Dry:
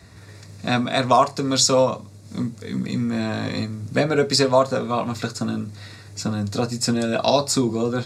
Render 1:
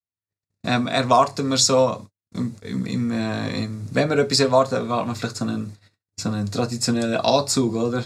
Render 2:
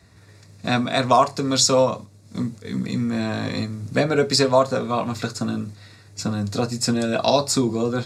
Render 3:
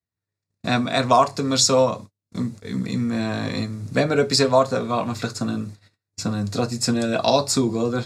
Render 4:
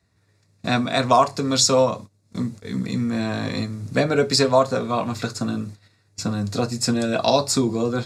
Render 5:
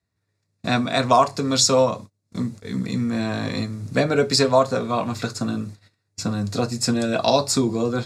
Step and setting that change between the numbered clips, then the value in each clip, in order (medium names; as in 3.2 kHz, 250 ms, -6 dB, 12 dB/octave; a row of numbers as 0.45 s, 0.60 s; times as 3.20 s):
gate, range: -57 dB, -6 dB, -44 dB, -20 dB, -32 dB